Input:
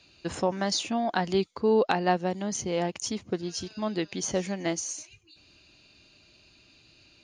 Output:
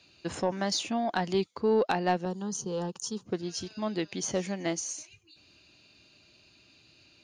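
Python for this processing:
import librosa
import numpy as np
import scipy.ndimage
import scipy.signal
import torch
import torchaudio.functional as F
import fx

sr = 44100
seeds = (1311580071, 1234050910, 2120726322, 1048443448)

y = scipy.signal.sosfilt(scipy.signal.butter(2, 72.0, 'highpass', fs=sr, output='sos'), x)
y = 10.0 ** (-13.0 / 20.0) * np.tanh(y / 10.0 ** (-13.0 / 20.0))
y = fx.fixed_phaser(y, sr, hz=430.0, stages=8, at=(2.25, 3.26))
y = F.gain(torch.from_numpy(y), -1.5).numpy()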